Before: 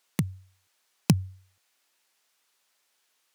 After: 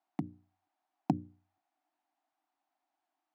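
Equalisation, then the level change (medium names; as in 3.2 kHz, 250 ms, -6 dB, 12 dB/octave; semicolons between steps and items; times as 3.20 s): two resonant band-passes 470 Hz, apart 1.3 oct; hum notches 60/120/180/240/300/360/420/480/540 Hz; +6.0 dB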